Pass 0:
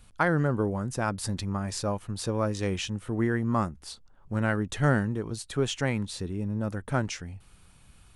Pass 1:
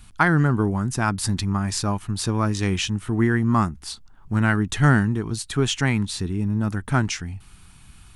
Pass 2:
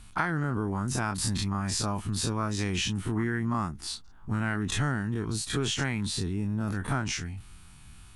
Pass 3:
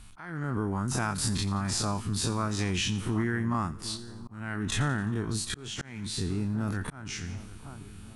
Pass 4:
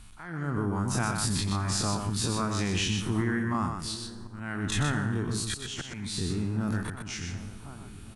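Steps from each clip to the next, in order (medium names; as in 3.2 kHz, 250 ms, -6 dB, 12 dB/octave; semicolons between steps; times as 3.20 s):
peaking EQ 530 Hz -14.5 dB 0.51 oct; trim +8 dB
every event in the spectrogram widened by 60 ms; compression 6:1, threshold -18 dBFS, peak gain reduction 9 dB; trim -6.5 dB
two-band feedback delay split 1.3 kHz, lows 747 ms, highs 87 ms, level -15.5 dB; slow attack 417 ms
delay 124 ms -5.5 dB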